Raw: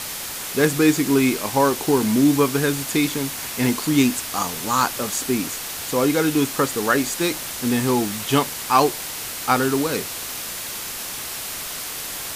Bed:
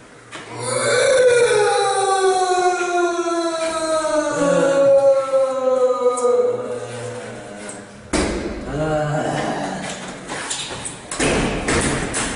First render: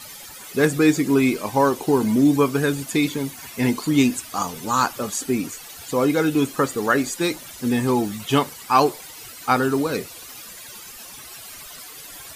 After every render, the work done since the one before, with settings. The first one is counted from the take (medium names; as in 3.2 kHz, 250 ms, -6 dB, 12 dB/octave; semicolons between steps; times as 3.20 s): noise reduction 14 dB, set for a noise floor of -31 dBFS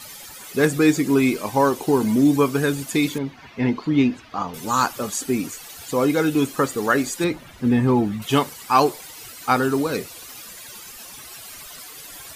3.18–4.54 s: distance through air 260 m; 7.24–8.22 s: tone controls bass +6 dB, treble -15 dB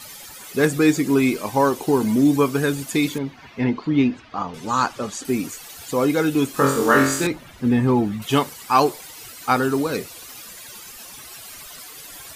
3.64–5.25 s: distance through air 65 m; 6.52–7.27 s: flutter echo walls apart 3.8 m, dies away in 0.63 s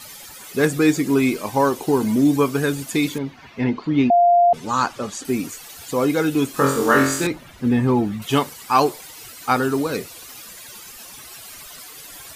4.10–4.53 s: bleep 698 Hz -10.5 dBFS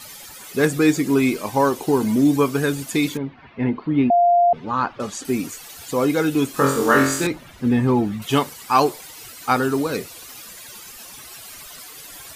3.17–5.00 s: distance through air 320 m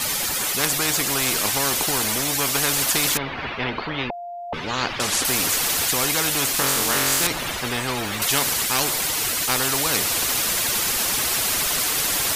gain riding within 3 dB 0.5 s; spectrum-flattening compressor 4:1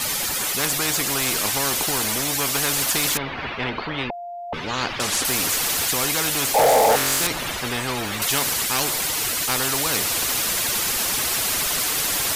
6.54–6.96 s: painted sound noise 430–900 Hz -12 dBFS; saturation -11 dBFS, distortion -14 dB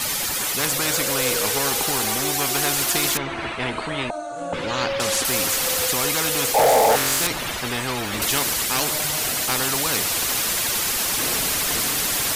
add bed -15 dB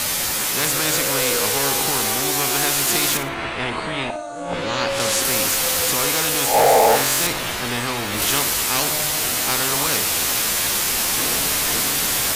reverse spectral sustain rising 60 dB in 0.40 s; on a send: flutter echo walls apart 9.9 m, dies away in 0.33 s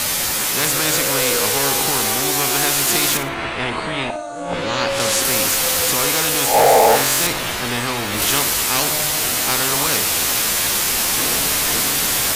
trim +2 dB